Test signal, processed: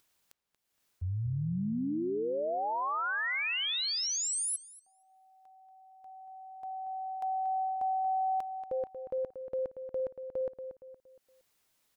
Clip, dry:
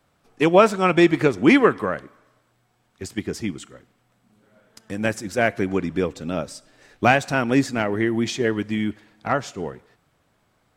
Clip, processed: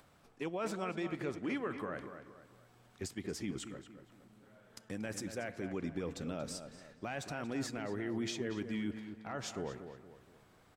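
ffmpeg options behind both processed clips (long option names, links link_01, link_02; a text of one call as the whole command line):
ffmpeg -i in.wav -filter_complex "[0:a]areverse,acompressor=threshold=-26dB:ratio=5,areverse,alimiter=limit=-23dB:level=0:latency=1:release=79,acompressor=mode=upward:threshold=-51dB:ratio=2.5,asplit=2[link_01][link_02];[link_02]adelay=233,lowpass=frequency=2700:poles=1,volume=-9dB,asplit=2[link_03][link_04];[link_04]adelay=233,lowpass=frequency=2700:poles=1,volume=0.4,asplit=2[link_05][link_06];[link_06]adelay=233,lowpass=frequency=2700:poles=1,volume=0.4,asplit=2[link_07][link_08];[link_08]adelay=233,lowpass=frequency=2700:poles=1,volume=0.4[link_09];[link_01][link_03][link_05][link_07][link_09]amix=inputs=5:normalize=0,volume=-6dB" out.wav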